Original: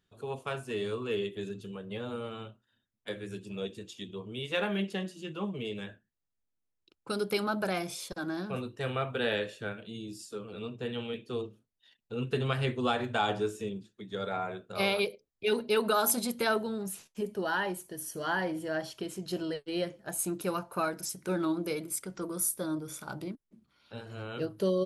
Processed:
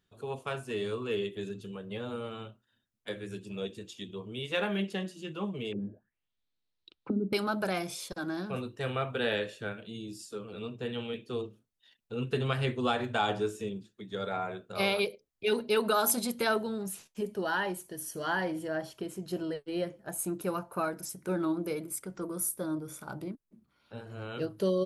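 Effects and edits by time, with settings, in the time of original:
5.72–7.33 envelope low-pass 260–4200 Hz down, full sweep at -37.5 dBFS
18.67–24.22 bell 4300 Hz -6.5 dB 2.1 oct

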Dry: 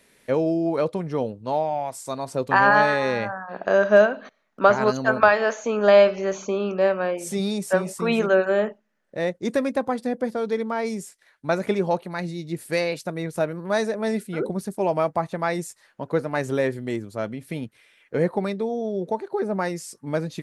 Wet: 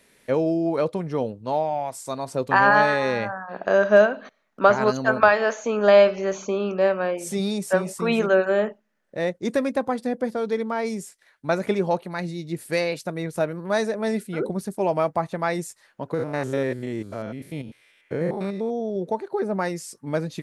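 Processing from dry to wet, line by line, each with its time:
16.14–18.96 stepped spectrum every 0.1 s

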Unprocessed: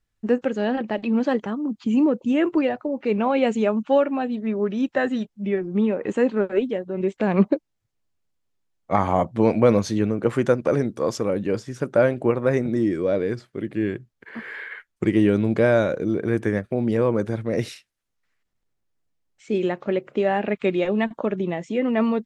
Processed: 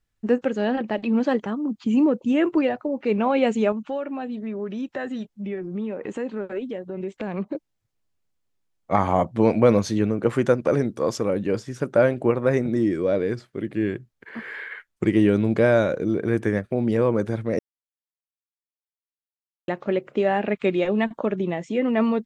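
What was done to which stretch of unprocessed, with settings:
3.72–7.55 compressor 2.5:1, threshold -29 dBFS
17.59–19.68 mute

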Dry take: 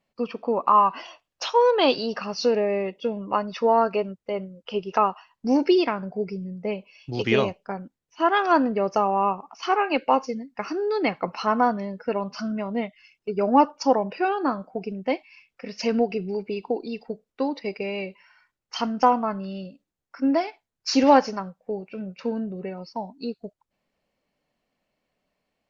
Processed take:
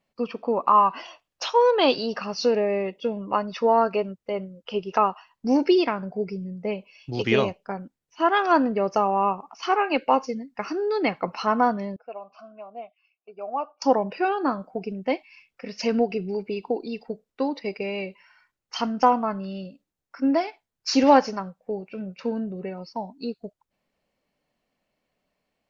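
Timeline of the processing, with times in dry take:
11.96–13.82 vowel filter a

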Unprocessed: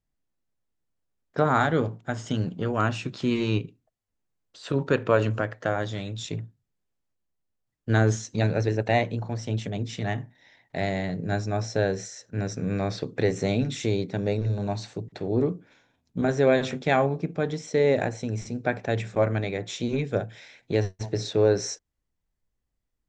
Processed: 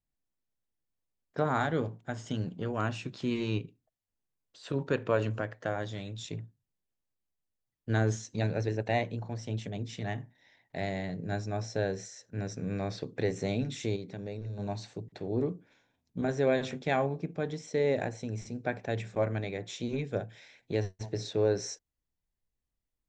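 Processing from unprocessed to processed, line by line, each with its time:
13.96–14.59 compressor 2:1, threshold -33 dBFS
whole clip: bell 1300 Hz -3.5 dB 0.25 oct; gain -6.5 dB

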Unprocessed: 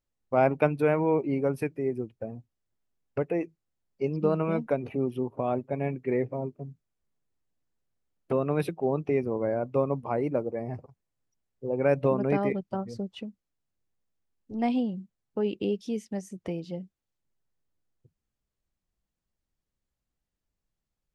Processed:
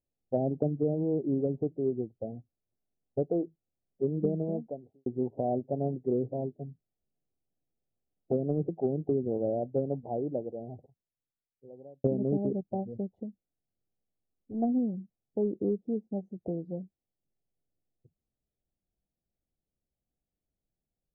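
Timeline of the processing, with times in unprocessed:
4.16–5.06 studio fade out
9.25–12.04 fade out
whole clip: elliptic low-pass 760 Hz, stop band 40 dB; low shelf 61 Hz -5.5 dB; treble ducked by the level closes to 370 Hz, closed at -22.5 dBFS

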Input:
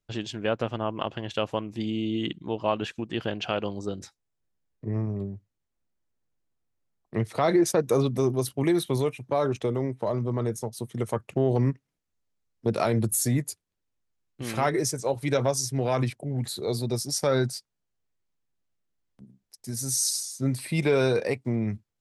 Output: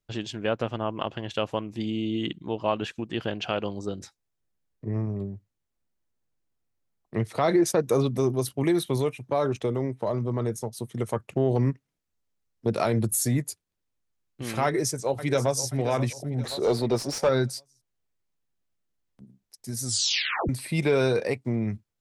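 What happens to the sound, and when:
14.65–15.69 echo throw 0.53 s, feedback 40%, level -13 dB
16.44–17.29 overdrive pedal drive 20 dB, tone 1200 Hz, clips at -11.5 dBFS
19.83 tape stop 0.66 s

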